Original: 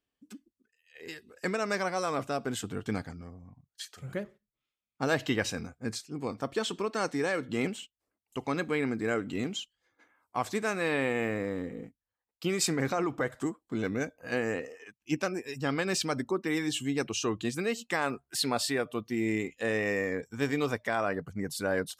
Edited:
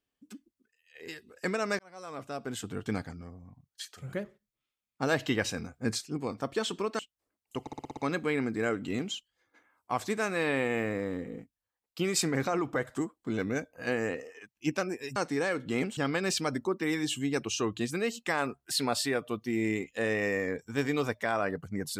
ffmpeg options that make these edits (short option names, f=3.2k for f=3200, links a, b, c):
-filter_complex "[0:a]asplit=13[a][b][c][d][e][f][g][h][i][j][k][l][m];[a]atrim=end=1.79,asetpts=PTS-STARTPTS,afade=t=out:st=1.786:d=0.004:c=hsin[n];[b]atrim=start=1.79:end=5.742,asetpts=PTS-STARTPTS,afade=t=in:d=1.06[o];[c]atrim=start=5.738:end=6.172,asetpts=PTS-STARTPTS,volume=4dB[p];[d]atrim=start=6.168:end=6.992[q];[e]atrim=start=7.798:end=8.482[r];[f]atrim=start=8.418:end=8.482[s];[g]atrim=start=8.418:end=8.482[t];[h]atrim=start=8.418:end=8.482[u];[i]atrim=start=8.418:end=8.482[v];[j]atrim=start=8.418:end=8.482[w];[k]atrim=start=8.418:end=15.612[x];[l]atrim=start=6.988:end=7.802[y];[m]atrim=start=15.608[z];[n][o]concat=n=2:v=0:a=1[aa];[aa][p]acrossfade=d=0.004:c1=hsin:c2=hsin[ab];[ab][q]acrossfade=d=0.004:c1=hsin:c2=hsin[ac];[ac][r]acrossfade=d=0.004:c1=hsin:c2=hsin[ad];[ad][s]acrossfade=d=0.004:c1=hsin:c2=hsin[ae];[ae][t]acrossfade=d=0.004:c1=hsin:c2=hsin[af];[af][u]acrossfade=d=0.004:c1=hsin:c2=hsin[ag];[ag][v]acrossfade=d=0.004:c1=hsin:c2=hsin[ah];[ah][w]acrossfade=d=0.004:c1=hsin:c2=hsin[ai];[ai][x]acrossfade=d=0.004:c1=hsin:c2=hsin[aj];[aj][y]acrossfade=d=0.004:c1=hsin:c2=hsin[ak];[ak][z]acrossfade=d=0.004:c1=hsin:c2=hsin"